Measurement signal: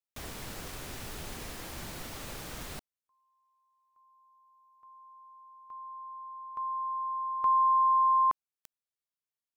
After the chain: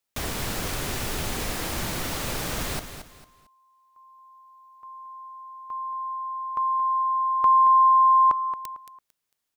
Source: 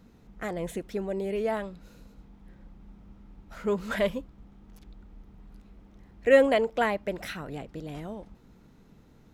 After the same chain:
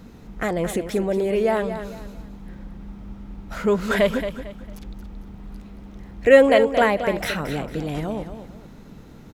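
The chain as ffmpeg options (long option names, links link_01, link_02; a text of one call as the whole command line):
ffmpeg -i in.wav -filter_complex "[0:a]asplit=2[link_01][link_02];[link_02]acompressor=threshold=-37dB:ratio=6:attack=14:release=114,volume=1dB[link_03];[link_01][link_03]amix=inputs=2:normalize=0,aecho=1:1:225|450|675:0.316|0.0949|0.0285,volume=5.5dB" out.wav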